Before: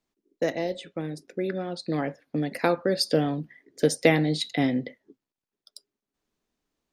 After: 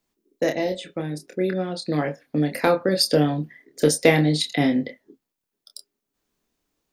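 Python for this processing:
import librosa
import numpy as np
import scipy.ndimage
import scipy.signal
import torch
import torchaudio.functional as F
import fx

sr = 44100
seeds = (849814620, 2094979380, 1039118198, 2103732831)

p1 = fx.high_shelf(x, sr, hz=9600.0, db=8.5)
p2 = np.clip(p1, -10.0 ** (-13.5 / 20.0), 10.0 ** (-13.5 / 20.0))
p3 = p1 + (p2 * 10.0 ** (-7.0 / 20.0))
y = fx.doubler(p3, sr, ms=27.0, db=-6.0)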